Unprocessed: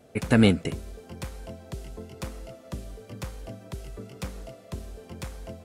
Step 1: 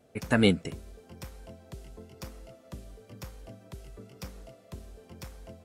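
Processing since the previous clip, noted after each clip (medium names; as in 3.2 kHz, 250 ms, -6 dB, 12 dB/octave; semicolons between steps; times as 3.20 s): spectral noise reduction 7 dB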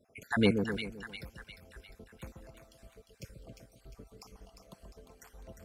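random holes in the spectrogram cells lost 58%; two-band feedback delay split 1.1 kHz, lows 130 ms, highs 352 ms, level -6 dB; trim -3.5 dB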